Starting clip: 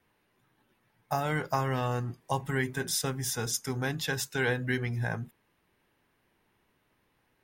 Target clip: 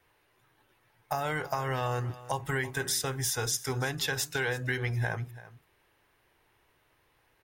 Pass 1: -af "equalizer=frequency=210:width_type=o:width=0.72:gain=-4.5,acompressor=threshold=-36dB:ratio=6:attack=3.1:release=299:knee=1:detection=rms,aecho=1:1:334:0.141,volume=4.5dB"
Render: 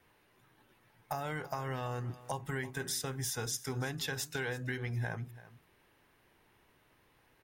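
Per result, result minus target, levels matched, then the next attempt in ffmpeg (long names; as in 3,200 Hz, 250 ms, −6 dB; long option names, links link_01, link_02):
downward compressor: peak gain reduction +7 dB; 250 Hz band +3.0 dB
-af "equalizer=frequency=210:width_type=o:width=0.72:gain=-4.5,acompressor=threshold=-28.5dB:ratio=6:attack=3.1:release=299:knee=1:detection=rms,aecho=1:1:334:0.141,volume=4.5dB"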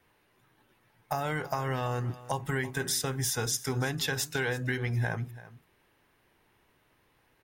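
250 Hz band +3.0 dB
-af "equalizer=frequency=210:width_type=o:width=0.72:gain=-14.5,acompressor=threshold=-28.5dB:ratio=6:attack=3.1:release=299:knee=1:detection=rms,aecho=1:1:334:0.141,volume=4.5dB"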